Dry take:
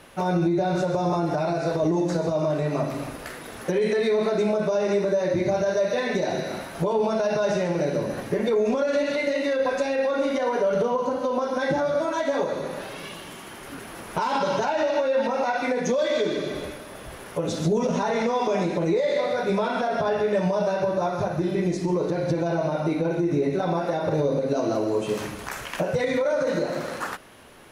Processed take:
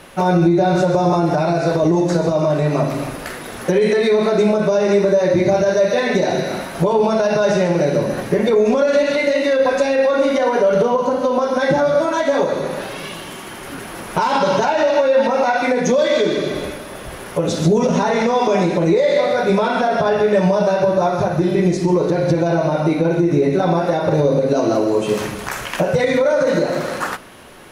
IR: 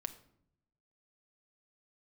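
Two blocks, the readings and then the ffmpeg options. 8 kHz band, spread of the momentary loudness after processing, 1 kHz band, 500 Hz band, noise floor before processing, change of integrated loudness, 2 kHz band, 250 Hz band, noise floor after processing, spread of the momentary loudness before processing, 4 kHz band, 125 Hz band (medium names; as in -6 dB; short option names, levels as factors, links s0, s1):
+7.5 dB, 10 LU, +8.0 dB, +8.0 dB, -40 dBFS, +8.0 dB, +8.0 dB, +8.0 dB, -32 dBFS, 10 LU, +7.5 dB, +8.5 dB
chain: -filter_complex "[0:a]asplit=2[s0][s1];[1:a]atrim=start_sample=2205[s2];[s1][s2]afir=irnorm=-1:irlink=0,volume=1.06[s3];[s0][s3]amix=inputs=2:normalize=0,volume=1.33"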